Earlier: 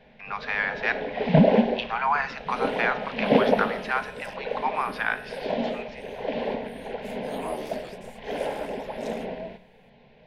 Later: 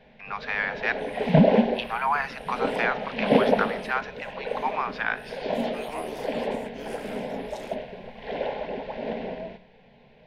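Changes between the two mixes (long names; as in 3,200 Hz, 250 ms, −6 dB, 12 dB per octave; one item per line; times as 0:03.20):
speech: send −6.0 dB
second sound: entry −1.50 s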